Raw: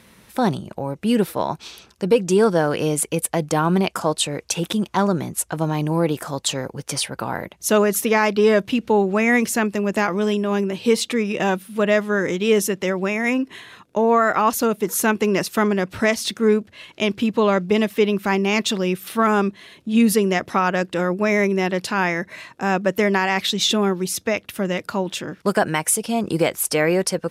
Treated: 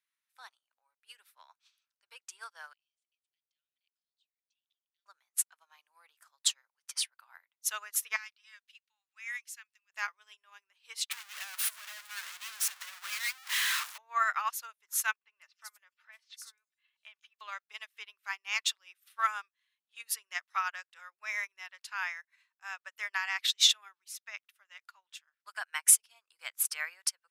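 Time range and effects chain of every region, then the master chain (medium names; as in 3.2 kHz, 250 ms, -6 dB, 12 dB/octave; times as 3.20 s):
2.73–5.06 s: inverse Chebyshev high-pass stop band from 1 kHz, stop band 60 dB + tape spacing loss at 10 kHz 43 dB + three bands compressed up and down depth 40%
8.16–9.90 s: Bessel high-pass 2.6 kHz + treble shelf 9.5 kHz -6.5 dB
11.11–13.98 s: one-bit comparator + high-pass 530 Hz
15.16–17.41 s: comb 3.4 ms, depth 34% + compression 10:1, threshold -21 dBFS + three bands offset in time lows, mids, highs 50/210 ms, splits 290/4300 Hz
23.92–25.61 s: treble shelf 3.6 kHz -2.5 dB + band-stop 500 Hz, Q 5.7
whole clip: high-pass 1.2 kHz 24 dB/octave; upward expansion 2.5:1, over -41 dBFS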